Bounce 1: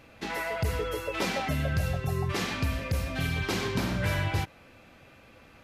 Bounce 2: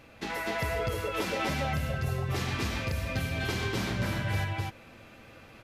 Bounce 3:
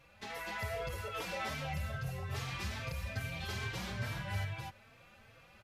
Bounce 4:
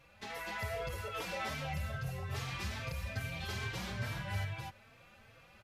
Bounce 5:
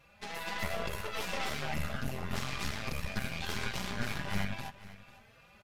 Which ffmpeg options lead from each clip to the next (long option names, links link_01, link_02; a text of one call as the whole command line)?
ffmpeg -i in.wav -filter_complex "[0:a]acompressor=threshold=-30dB:ratio=6,asplit=2[link_01][link_02];[link_02]aecho=0:1:245|254:0.708|0.668[link_03];[link_01][link_03]amix=inputs=2:normalize=0" out.wav
ffmpeg -i in.wav -filter_complex "[0:a]equalizer=frequency=300:width=1.6:gain=-11.5,asplit=2[link_01][link_02];[link_02]adelay=3.8,afreqshift=2.4[link_03];[link_01][link_03]amix=inputs=2:normalize=1,volume=-4dB" out.wav
ffmpeg -i in.wav -af anull out.wav
ffmpeg -i in.wav -af "aeval=exprs='0.0501*(cos(1*acos(clip(val(0)/0.0501,-1,1)))-cos(1*PI/2))+0.0224*(cos(4*acos(clip(val(0)/0.0501,-1,1)))-cos(4*PI/2))':channel_layout=same,aecho=1:1:4.9:0.32,aecho=1:1:496:0.133" out.wav